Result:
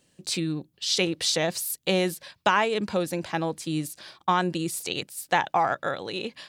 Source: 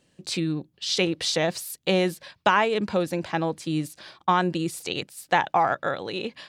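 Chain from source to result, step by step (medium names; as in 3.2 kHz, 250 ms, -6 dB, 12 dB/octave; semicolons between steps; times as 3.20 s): treble shelf 6.2 kHz +9.5 dB; trim -2 dB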